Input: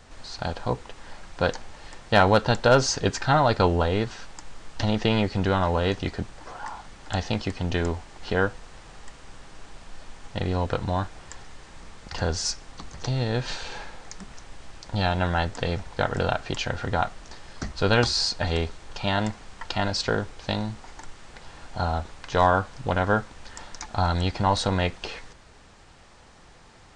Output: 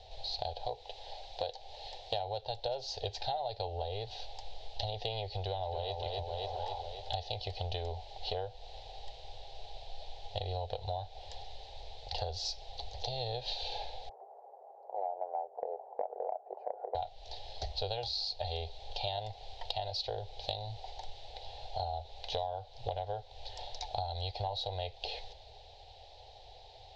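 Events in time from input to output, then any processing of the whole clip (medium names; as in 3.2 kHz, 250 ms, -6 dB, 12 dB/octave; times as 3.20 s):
0.66–2.13 s: tone controls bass -6 dB, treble +2 dB
5.44–5.92 s: echo throw 270 ms, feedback 55%, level -5.5 dB
14.09–16.95 s: elliptic band-pass 380–1200 Hz, stop band 50 dB
whole clip: FFT filter 110 Hz 0 dB, 160 Hz -25 dB, 290 Hz -24 dB, 420 Hz -1 dB, 790 Hz +9 dB, 1.2 kHz -26 dB, 3.9 kHz +10 dB, 10 kHz -28 dB; compression 10:1, threshold -30 dBFS; trim -3 dB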